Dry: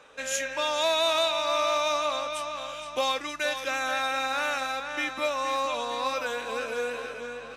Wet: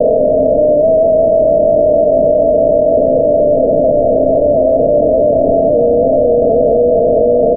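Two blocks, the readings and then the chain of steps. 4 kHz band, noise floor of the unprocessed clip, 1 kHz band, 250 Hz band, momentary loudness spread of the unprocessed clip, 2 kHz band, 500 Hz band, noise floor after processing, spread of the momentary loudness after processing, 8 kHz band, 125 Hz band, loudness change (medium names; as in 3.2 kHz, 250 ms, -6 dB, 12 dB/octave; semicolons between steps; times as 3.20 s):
under -40 dB, -41 dBFS, +7.5 dB, +25.0 dB, 9 LU, under -30 dB, +23.0 dB, -12 dBFS, 1 LU, under -40 dB, no reading, +17.5 dB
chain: spectral levelling over time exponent 0.2; high-pass 83 Hz 24 dB/octave; comb 4.6 ms, depth 83%; saturation -20.5 dBFS, distortion -9 dB; steep low-pass 670 Hz 96 dB/octave; early reflections 27 ms -16 dB, 71 ms -15 dB; loudness maximiser +23 dB; level flattener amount 50%; trim -3 dB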